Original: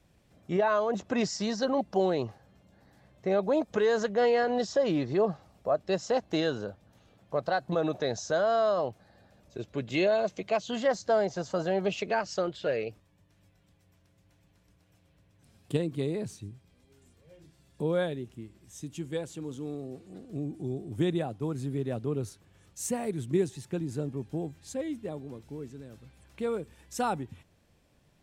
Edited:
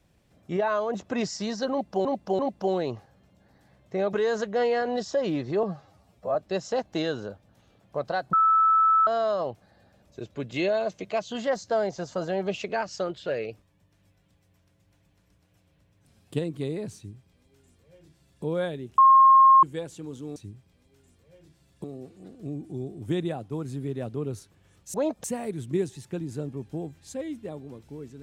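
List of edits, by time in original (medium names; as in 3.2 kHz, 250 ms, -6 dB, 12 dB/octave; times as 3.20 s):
1.71–2.05 s: loop, 3 plays
3.45–3.75 s: move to 22.84 s
5.25–5.73 s: stretch 1.5×
7.71–8.45 s: bleep 1.31 kHz -16.5 dBFS
16.34–17.82 s: copy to 19.74 s
18.36–19.01 s: bleep 1.07 kHz -11.5 dBFS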